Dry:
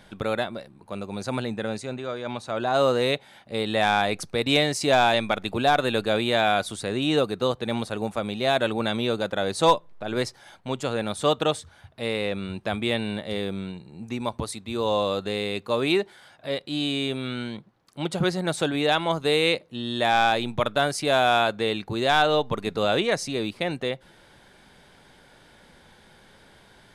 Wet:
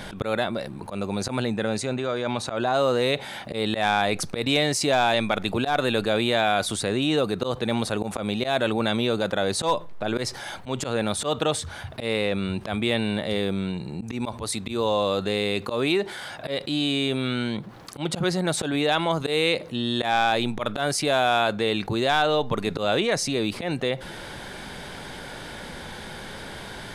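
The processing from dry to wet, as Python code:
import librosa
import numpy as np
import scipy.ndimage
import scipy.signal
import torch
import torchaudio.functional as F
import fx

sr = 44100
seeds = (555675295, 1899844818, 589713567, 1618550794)

y = fx.auto_swell(x, sr, attack_ms=115.0)
y = fx.env_flatten(y, sr, amount_pct=50)
y = y * librosa.db_to_amplitude(-2.5)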